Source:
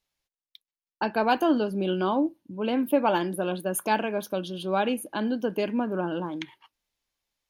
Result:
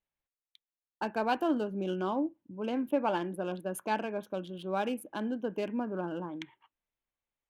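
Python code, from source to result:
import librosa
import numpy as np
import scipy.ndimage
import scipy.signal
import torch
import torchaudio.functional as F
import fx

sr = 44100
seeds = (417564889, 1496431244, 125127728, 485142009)

y = fx.wiener(x, sr, points=9)
y = fx.high_shelf(y, sr, hz=9900.0, db=-10.0, at=(1.84, 4.53))
y = y * librosa.db_to_amplitude(-6.5)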